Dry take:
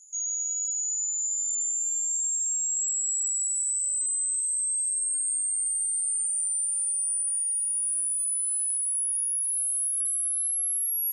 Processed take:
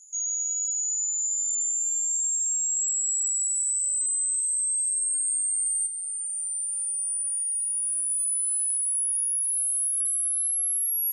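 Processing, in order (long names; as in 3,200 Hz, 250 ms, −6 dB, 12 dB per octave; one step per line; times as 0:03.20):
0:05.86–0:08.08: parametric band 8,100 Hz → 6,800 Hz −12 dB 0.35 octaves
level +1.5 dB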